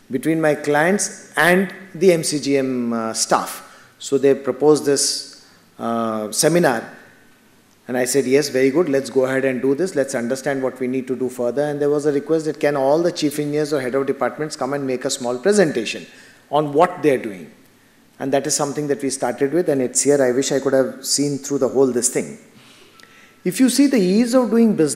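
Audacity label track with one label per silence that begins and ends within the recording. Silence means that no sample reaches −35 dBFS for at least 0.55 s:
7.040000	7.890000	silence
17.480000	18.200000	silence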